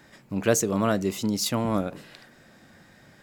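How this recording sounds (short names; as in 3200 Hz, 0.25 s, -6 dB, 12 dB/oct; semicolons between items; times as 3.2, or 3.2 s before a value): noise floor -55 dBFS; spectral tilt -4.5 dB/oct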